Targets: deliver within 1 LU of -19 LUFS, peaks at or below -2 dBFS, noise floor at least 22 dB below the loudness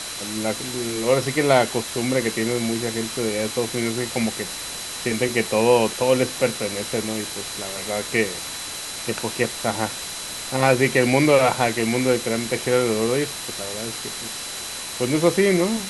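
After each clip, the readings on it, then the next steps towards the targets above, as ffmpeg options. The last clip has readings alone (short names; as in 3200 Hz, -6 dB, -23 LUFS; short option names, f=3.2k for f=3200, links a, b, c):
steady tone 4000 Hz; tone level -37 dBFS; noise floor -32 dBFS; noise floor target -45 dBFS; loudness -22.5 LUFS; peak -2.5 dBFS; loudness target -19.0 LUFS
-> -af "bandreject=f=4k:w=30"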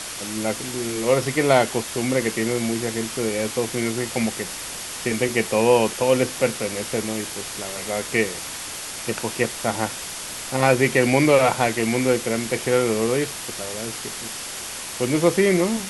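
steady tone none; noise floor -33 dBFS; noise floor target -45 dBFS
-> -af "afftdn=nr=12:nf=-33"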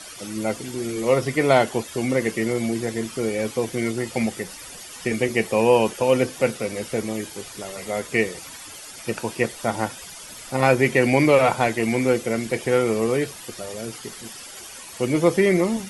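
noise floor -40 dBFS; noise floor target -45 dBFS
-> -af "afftdn=nr=6:nf=-40"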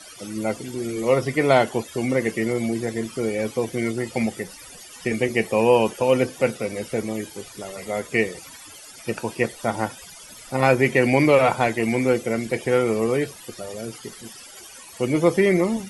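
noise floor -43 dBFS; noise floor target -45 dBFS
-> -af "afftdn=nr=6:nf=-43"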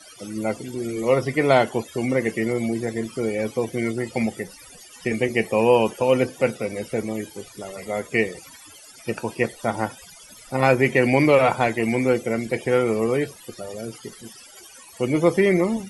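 noise floor -46 dBFS; loudness -22.5 LUFS; peak -3.0 dBFS; loudness target -19.0 LUFS
-> -af "volume=3.5dB,alimiter=limit=-2dB:level=0:latency=1"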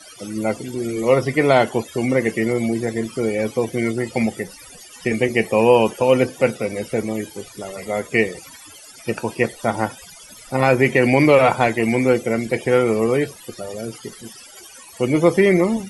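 loudness -19.0 LUFS; peak -2.0 dBFS; noise floor -43 dBFS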